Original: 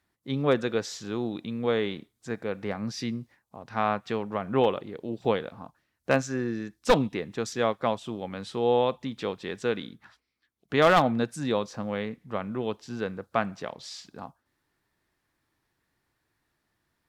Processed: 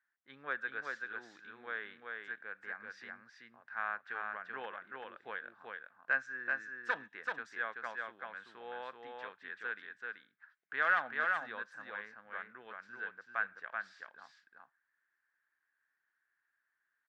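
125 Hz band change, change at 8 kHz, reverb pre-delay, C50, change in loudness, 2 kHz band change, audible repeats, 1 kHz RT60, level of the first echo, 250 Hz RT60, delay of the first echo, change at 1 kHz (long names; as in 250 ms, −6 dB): below −30 dB, below −25 dB, no reverb audible, no reverb audible, −11.0 dB, +0.5 dB, 1, no reverb audible, −3.5 dB, no reverb audible, 383 ms, −11.0 dB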